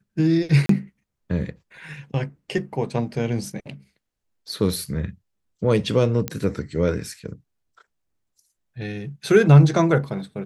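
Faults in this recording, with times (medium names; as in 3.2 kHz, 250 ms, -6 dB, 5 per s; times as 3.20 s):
0.66–0.69 s: dropout 33 ms
6.28 s: pop -9 dBFS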